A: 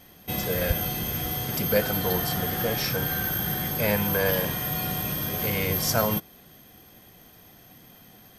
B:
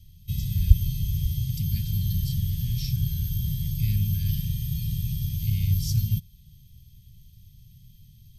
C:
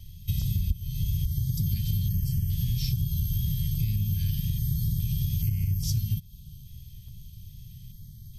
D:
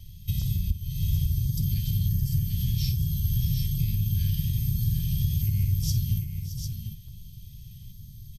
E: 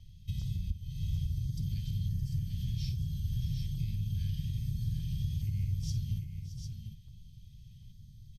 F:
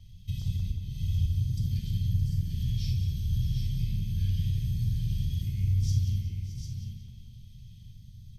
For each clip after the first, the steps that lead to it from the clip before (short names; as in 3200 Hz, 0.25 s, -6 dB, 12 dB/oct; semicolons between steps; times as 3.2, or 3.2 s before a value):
inverse Chebyshev band-stop 460–1000 Hz, stop band 80 dB; tilt -3 dB/oct
compressor 16:1, threshold -29 dBFS, peak gain reduction 22.5 dB; wow and flutter 24 cents; stepped notch 2.4 Hz 370–3700 Hz; gain +6.5 dB
tapped delay 51/61/619/747/761 ms -14/-17.5/-13.5/-7/-16.5 dB
air absorption 66 m; gain -8 dB
tape echo 0.182 s, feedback 66%, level -4.5 dB, low-pass 3600 Hz; on a send at -4 dB: reverb, pre-delay 3 ms; on the sum: gain +2 dB